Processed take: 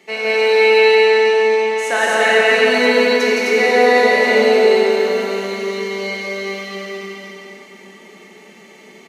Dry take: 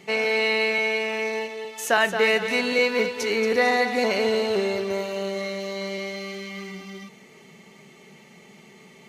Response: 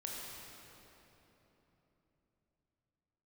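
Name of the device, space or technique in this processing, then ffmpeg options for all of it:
stadium PA: -filter_complex "[0:a]asettb=1/sr,asplit=3[link_01][link_02][link_03];[link_01]atrim=end=0.804[link_04];[link_02]atrim=start=0.8:end=2.45,asetpts=PTS-STARTPTS,afade=type=in:duration=0.004:curve=qsin,afade=type=out:start_time=1.646:duration=0.004:curve=qsin,lowpass=frequency=10000:width=0.5412,lowpass=frequency=10000:width=1.3066[link_05];[link_03]atrim=start=2.446[link_06];[link_04][link_05]acrossfade=duration=0.004:curve1=hsin:curve2=qsin[link_07];[link_07][link_06]acrossfade=duration=0.004:curve1=qsin:curve2=hsin,highpass=frequency=230:width=0.5412,highpass=frequency=230:width=1.3066,equalizer=frequency=1800:width_type=o:width=0.34:gain=4,aecho=1:1:166.2|259.5:0.794|0.891[link_08];[1:a]atrim=start_sample=2205[link_09];[link_08][link_09]afir=irnorm=-1:irlink=0,volume=3.5dB"

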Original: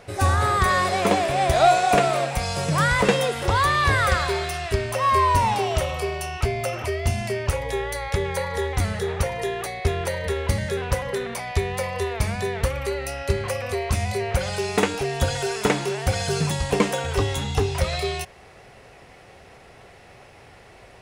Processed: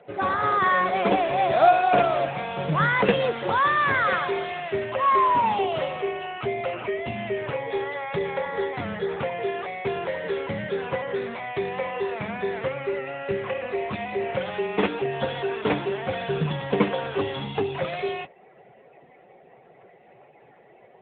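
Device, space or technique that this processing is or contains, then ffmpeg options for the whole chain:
mobile call with aggressive noise cancelling: -af "highpass=frequency=140:width=0.5412,highpass=frequency=140:width=1.3066,afftdn=noise_reduction=14:noise_floor=-46" -ar 8000 -c:a libopencore_amrnb -b:a 10200

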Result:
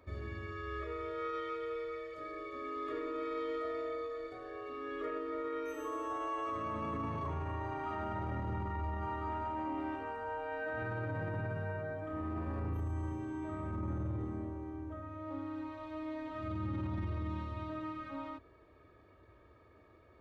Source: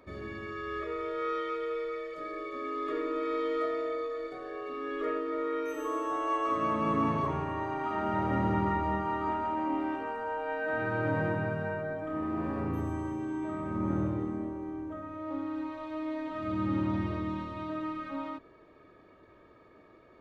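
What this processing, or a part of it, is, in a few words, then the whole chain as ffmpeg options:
car stereo with a boomy subwoofer: -af "highpass=44,lowshelf=frequency=120:width_type=q:width=1.5:gain=9.5,alimiter=level_in=1.5dB:limit=-24dB:level=0:latency=1:release=20,volume=-1.5dB,volume=-5dB"

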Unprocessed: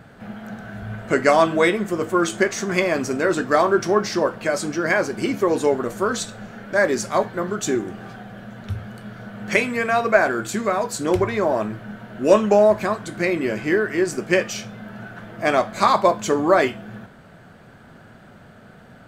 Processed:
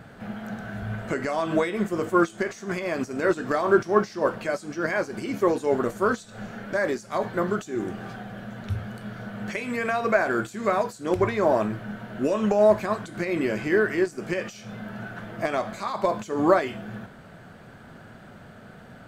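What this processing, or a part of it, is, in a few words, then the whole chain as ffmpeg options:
de-esser from a sidechain: -filter_complex "[0:a]asplit=2[link_01][link_02];[link_02]highpass=frequency=4100:width=0.5412,highpass=frequency=4100:width=1.3066,apad=whole_len=841149[link_03];[link_01][link_03]sidechaincompress=threshold=-46dB:ratio=4:attack=3.2:release=99"

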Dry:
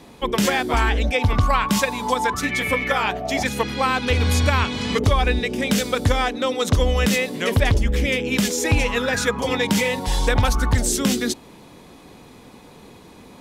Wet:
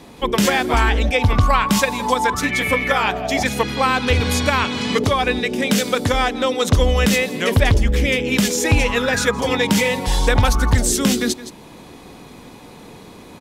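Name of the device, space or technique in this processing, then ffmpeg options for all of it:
ducked delay: -filter_complex "[0:a]asettb=1/sr,asplit=3[link_01][link_02][link_03];[link_01]atrim=end=4.204[link_04];[link_02]atrim=start=4.2:end=6.14,asetpts=PTS-STARTPTS,afade=type=in:duration=0.004:curve=qsin,afade=type=out:start_time=1.936:duration=0.004:curve=qsin,highpass=130[link_05];[link_03]atrim=start=6.136[link_06];[link_04][link_05]acrossfade=duration=0.004:curve1=hsin:curve2=qsin[link_07];[link_07][link_06]acrossfade=duration=0.004:curve1=qsin:curve2=hsin,asplit=3[link_08][link_09][link_10];[link_09]adelay=166,volume=-3dB[link_11];[link_10]apad=whole_len=598370[link_12];[link_11][link_12]sidechaincompress=threshold=-37dB:ratio=10:attack=24:release=317[link_13];[link_08][link_13]amix=inputs=2:normalize=0,volume=3dB"

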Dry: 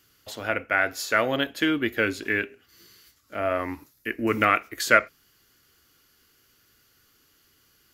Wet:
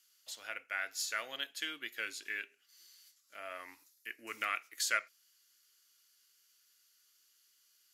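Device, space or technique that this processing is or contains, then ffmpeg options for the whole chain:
piezo pickup straight into a mixer: -af "lowpass=8900,aderivative,volume=-1.5dB"

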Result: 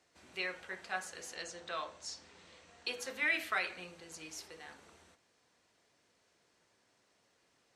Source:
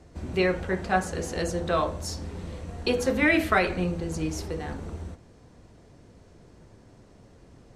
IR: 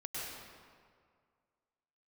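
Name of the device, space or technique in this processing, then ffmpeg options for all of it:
filter by subtraction: -filter_complex "[0:a]asplit=2[link_01][link_02];[link_02]lowpass=2600,volume=-1[link_03];[link_01][link_03]amix=inputs=2:normalize=0,asettb=1/sr,asplit=3[link_04][link_05][link_06];[link_04]atrim=end=1.354[link_07];[link_05]atrim=start=1.35:end=2.86,asetpts=PTS-STARTPTS,afade=type=in:duration=0.004:curve=qsin,afade=type=out:start_time=1.506:duration=0.004:curve=qsin,lowpass=frequency=8100:width=0.5412,lowpass=frequency=8100:width=1.3066[link_08];[link_06]atrim=start=2.856[link_09];[link_07][link_08]acrossfade=duration=0.004:curve1=hsin:curve2=qsin[link_10];[link_10][link_09]acrossfade=duration=0.004:curve1=qsin:curve2=hsin,volume=-8.5dB"

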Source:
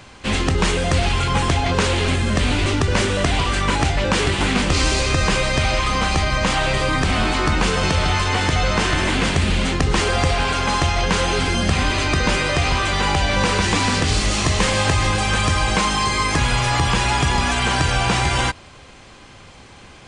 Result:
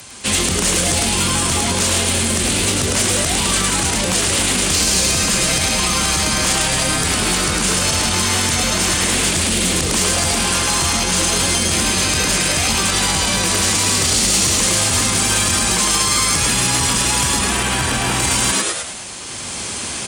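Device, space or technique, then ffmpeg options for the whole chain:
FM broadcast chain: -filter_complex "[0:a]asettb=1/sr,asplit=3[link_01][link_02][link_03];[link_01]atrim=end=17.394[link_04];[link_02]atrim=start=17.39:end=18.2,asetpts=PTS-STARTPTS,afade=type=in:duration=0.004:curve=qsin,afade=type=out:start_time=0.806:duration=0.004:curve=qsin,acrossover=split=3300[link_05][link_06];[link_06]acompressor=threshold=-39dB:ratio=4:attack=1:release=60[link_07];[link_05][link_07]amix=inputs=2:normalize=0[link_08];[link_03]atrim=start=18.196[link_09];[link_04][link_08]acrossfade=duration=0.004:curve1=hsin:curve2=qsin[link_10];[link_10][link_09]acrossfade=duration=0.004:curve1=qsin:curve2=hsin,asplit=7[link_11][link_12][link_13][link_14][link_15][link_16][link_17];[link_12]adelay=105,afreqshift=140,volume=-3.5dB[link_18];[link_13]adelay=210,afreqshift=280,volume=-10.2dB[link_19];[link_14]adelay=315,afreqshift=420,volume=-17dB[link_20];[link_15]adelay=420,afreqshift=560,volume=-23.7dB[link_21];[link_16]adelay=525,afreqshift=700,volume=-30.5dB[link_22];[link_17]adelay=630,afreqshift=840,volume=-37.2dB[link_23];[link_11][link_18][link_19][link_20][link_21][link_22][link_23]amix=inputs=7:normalize=0,highpass=56,dynaudnorm=framelen=400:gausssize=3:maxgain=11dB,acrossover=split=140|7400[link_24][link_25][link_26];[link_24]acompressor=threshold=-22dB:ratio=4[link_27];[link_25]acompressor=threshold=-18dB:ratio=4[link_28];[link_26]acompressor=threshold=-40dB:ratio=4[link_29];[link_27][link_28][link_29]amix=inputs=3:normalize=0,aemphasis=mode=production:type=50fm,alimiter=limit=-10dB:level=0:latency=1:release=25,asoftclip=type=hard:threshold=-13dB,lowpass=frequency=15000:width=0.5412,lowpass=frequency=15000:width=1.3066,aemphasis=mode=production:type=50fm"

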